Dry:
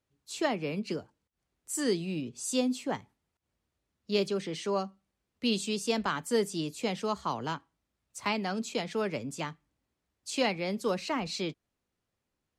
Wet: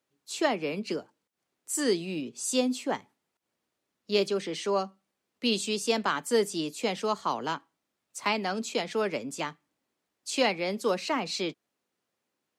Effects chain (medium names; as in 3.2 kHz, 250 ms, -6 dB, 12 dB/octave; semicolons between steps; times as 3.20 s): high-pass 240 Hz 12 dB/octave; trim +3.5 dB